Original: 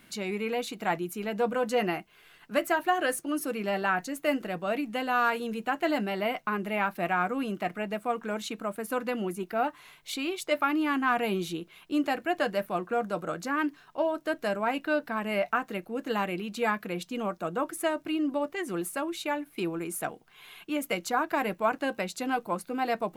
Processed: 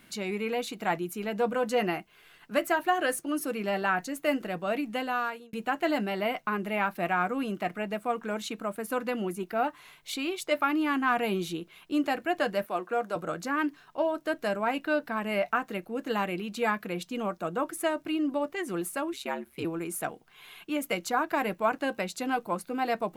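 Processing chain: 4.97–5.53 fade out; 12.64–13.16 HPF 300 Hz 12 dB/oct; 19.13–19.65 ring modulator 68 Hz

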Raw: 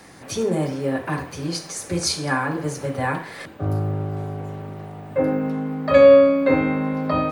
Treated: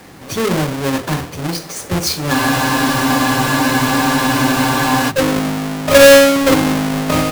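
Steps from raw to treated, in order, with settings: half-waves squared off; spectral freeze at 2.35, 2.75 s; gain +1.5 dB

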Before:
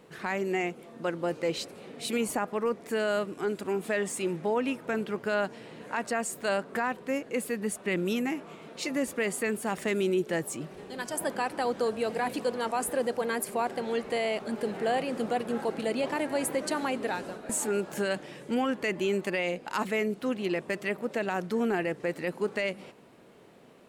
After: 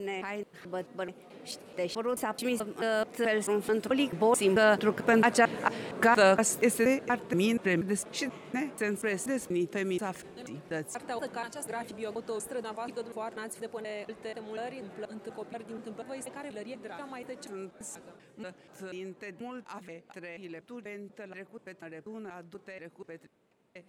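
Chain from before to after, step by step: slices in reverse order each 0.229 s, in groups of 3; Doppler pass-by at 5.63, 19 m/s, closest 21 m; gain +8 dB

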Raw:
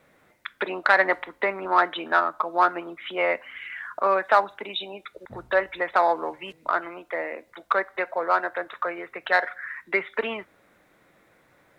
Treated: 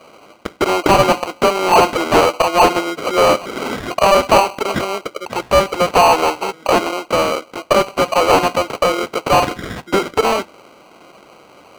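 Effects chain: sample-and-hold 25×; overdrive pedal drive 25 dB, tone 3500 Hz, clips at -3.5 dBFS; gain +2.5 dB

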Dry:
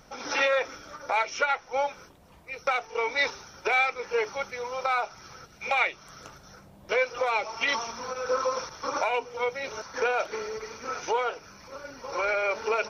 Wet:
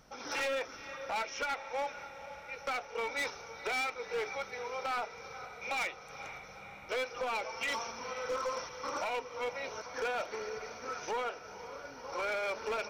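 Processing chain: diffused feedback echo 0.488 s, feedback 69%, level -14.5 dB; hard clip -24 dBFS, distortion -11 dB; gain -6.5 dB

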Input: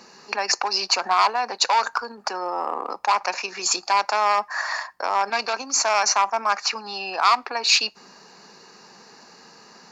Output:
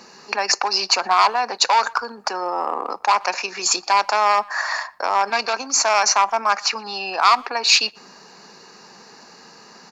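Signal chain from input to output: speakerphone echo 0.12 s, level -25 dB; gain +3 dB

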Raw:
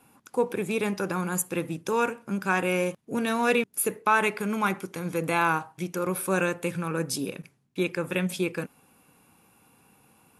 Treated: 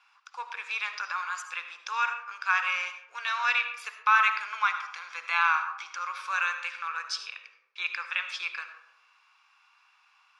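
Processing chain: elliptic band-pass 1100–5400 Hz, stop band 60 dB; digital reverb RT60 0.98 s, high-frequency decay 0.35×, pre-delay 35 ms, DRR 8 dB; gain +3 dB

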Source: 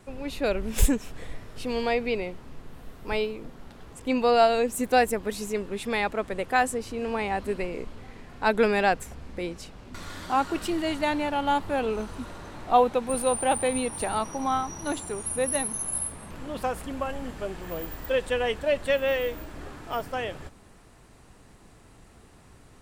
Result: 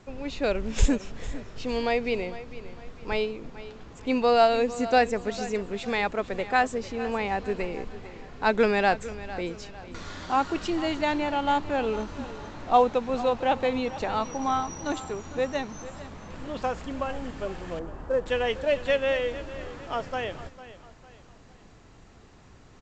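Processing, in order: 17.79–18.26 LPF 1400 Hz 24 dB/oct; on a send: feedback echo 0.452 s, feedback 39%, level -15.5 dB; on the sum: A-law 128 kbps 16000 Hz

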